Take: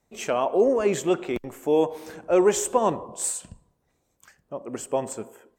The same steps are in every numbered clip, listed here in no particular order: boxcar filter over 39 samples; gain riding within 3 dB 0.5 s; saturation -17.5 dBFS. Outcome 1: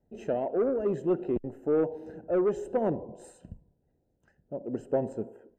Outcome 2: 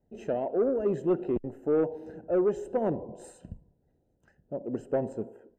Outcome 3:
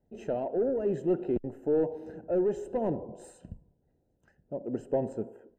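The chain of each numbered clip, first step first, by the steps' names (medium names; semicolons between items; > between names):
boxcar filter > saturation > gain riding; gain riding > boxcar filter > saturation; saturation > gain riding > boxcar filter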